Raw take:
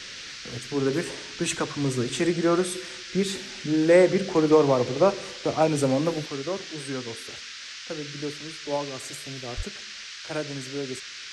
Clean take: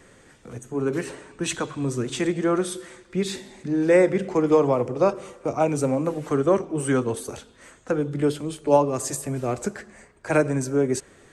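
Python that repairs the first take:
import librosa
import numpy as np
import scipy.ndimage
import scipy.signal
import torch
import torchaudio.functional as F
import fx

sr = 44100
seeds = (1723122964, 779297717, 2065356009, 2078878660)

y = fx.highpass(x, sr, hz=140.0, slope=24, at=(9.56, 9.68), fade=0.02)
y = fx.noise_reduce(y, sr, print_start_s=7.4, print_end_s=7.9, reduce_db=11.0)
y = fx.fix_level(y, sr, at_s=6.26, step_db=11.0)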